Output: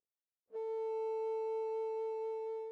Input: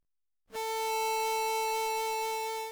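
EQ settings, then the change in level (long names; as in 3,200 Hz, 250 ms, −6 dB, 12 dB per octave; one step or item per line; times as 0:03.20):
resonant band-pass 470 Hz, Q 4.3
0.0 dB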